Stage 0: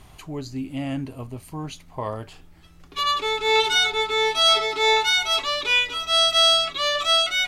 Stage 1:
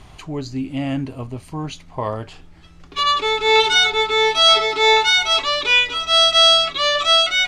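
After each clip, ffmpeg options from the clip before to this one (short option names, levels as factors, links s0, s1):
-af "lowpass=7200,volume=1.78"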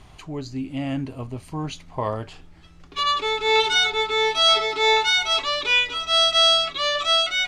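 -af "dynaudnorm=f=420:g=7:m=1.78,volume=0.596"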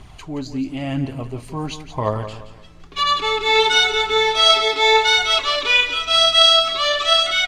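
-af "aphaser=in_gain=1:out_gain=1:delay=4.7:decay=0.35:speed=0.96:type=triangular,aecho=1:1:173|346|519|692:0.266|0.0931|0.0326|0.0114,volume=1.41"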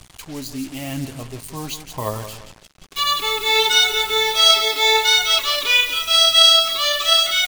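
-af "acrusher=bits=5:mix=0:aa=0.5,crystalizer=i=3:c=0,volume=0.596"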